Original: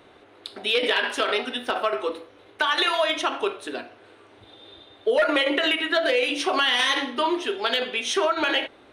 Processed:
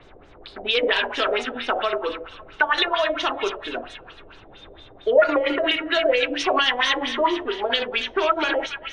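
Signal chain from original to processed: high shelf 5200 Hz -8.5 dB; thin delay 0.279 s, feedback 49%, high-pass 1800 Hz, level -6.5 dB; added noise brown -50 dBFS; LFO low-pass sine 4.4 Hz 530–7000 Hz

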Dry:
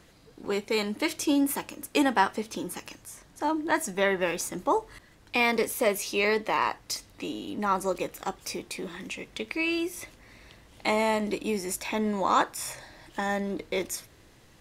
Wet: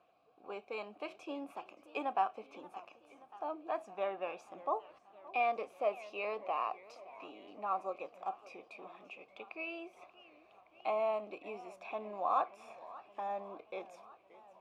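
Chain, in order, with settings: vowel filter a; high shelf 3700 Hz -8 dB; warbling echo 0.576 s, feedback 66%, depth 189 cents, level -19 dB; gain +1 dB

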